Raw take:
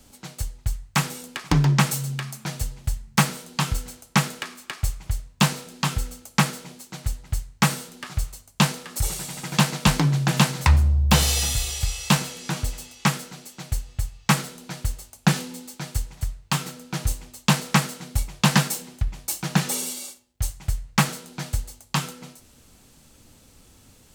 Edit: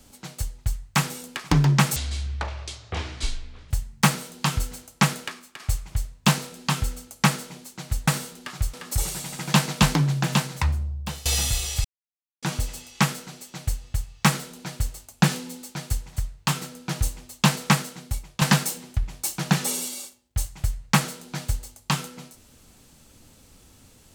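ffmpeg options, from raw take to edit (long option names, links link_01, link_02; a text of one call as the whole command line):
ffmpeg -i in.wav -filter_complex "[0:a]asplit=10[link_01][link_02][link_03][link_04][link_05][link_06][link_07][link_08][link_09][link_10];[link_01]atrim=end=1.964[link_11];[link_02]atrim=start=1.96:end=2.85,asetpts=PTS-STARTPTS,asetrate=22491,aresample=44100[link_12];[link_03]atrim=start=2.846:end=4.74,asetpts=PTS-STARTPTS,afade=type=out:start_time=1.504:duration=0.39:silence=0.316228[link_13];[link_04]atrim=start=4.74:end=7.222,asetpts=PTS-STARTPTS,afade=type=in:duration=0.004:curve=hsin:silence=0.316228[link_14];[link_05]atrim=start=7.638:end=8.302[link_15];[link_06]atrim=start=8.778:end=11.3,asetpts=PTS-STARTPTS,afade=type=out:start_time=1.122:duration=1.4:silence=0.0630957[link_16];[link_07]atrim=start=11.3:end=11.89,asetpts=PTS-STARTPTS,afade=type=in:duration=0.004:curve=hsin:silence=0.0630957,afade=type=out:start_time=0.586:duration=0.004:curve=hsin[link_17];[link_08]atrim=start=11.89:end=12.47,asetpts=PTS-STARTPTS,volume=0[link_18];[link_09]atrim=start=12.47:end=18.46,asetpts=PTS-STARTPTS,afade=type=in:duration=0.004:curve=hsin,afade=type=out:start_time=5.29:duration=0.7:silence=0.316228[link_19];[link_10]atrim=start=18.46,asetpts=PTS-STARTPTS,afade=type=in:duration=0.004:curve=hsin:silence=0.316228[link_20];[link_11][link_12]acrossfade=duration=0.004:curve1=hsin:curve2=hsin[link_21];[link_13][link_14]concat=n=2:v=0:a=1[link_22];[link_21][link_22]acrossfade=duration=0.004:curve1=hsin:curve2=hsin[link_23];[link_23][link_15]acrossfade=duration=0.004:curve1=hsin:curve2=hsin[link_24];[link_16][link_17][link_18][link_19][link_20]concat=n=5:v=0:a=1[link_25];[link_24][link_25]acrossfade=duration=0.004:curve1=hsin:curve2=hsin" out.wav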